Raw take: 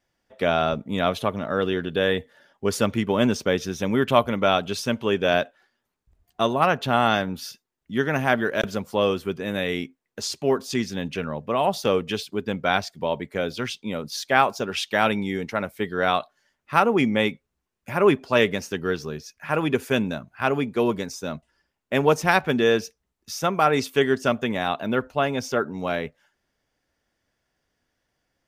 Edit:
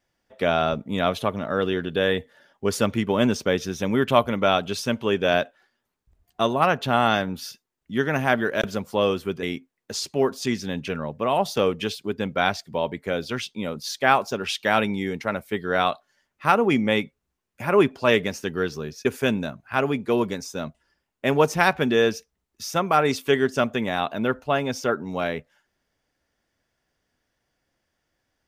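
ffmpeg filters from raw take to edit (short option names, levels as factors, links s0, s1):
-filter_complex "[0:a]asplit=3[s0][s1][s2];[s0]atrim=end=9.432[s3];[s1]atrim=start=9.708:end=19.332[s4];[s2]atrim=start=19.728[s5];[s3][s4]acrossfade=d=0.004:c1=hsin:c2=hsin[s6];[s6][s5]acrossfade=d=0.004:c1=hsin:c2=hsin"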